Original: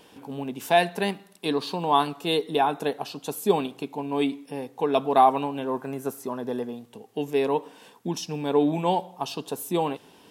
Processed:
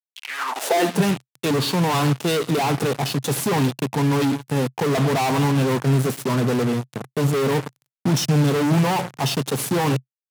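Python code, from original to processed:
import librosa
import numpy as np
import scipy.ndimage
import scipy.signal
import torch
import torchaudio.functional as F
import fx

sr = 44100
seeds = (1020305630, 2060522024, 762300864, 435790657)

y = fx.cvsd(x, sr, bps=64000)
y = fx.fuzz(y, sr, gain_db=42.0, gate_db=-40.0)
y = fx.filter_sweep_highpass(y, sr, from_hz=4000.0, to_hz=130.0, start_s=0.12, end_s=1.06, q=5.3)
y = F.gain(torch.from_numpy(y), -7.0).numpy()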